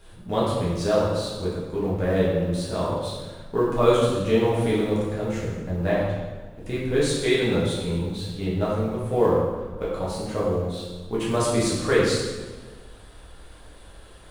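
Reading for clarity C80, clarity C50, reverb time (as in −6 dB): 2.5 dB, 0.0 dB, 1.4 s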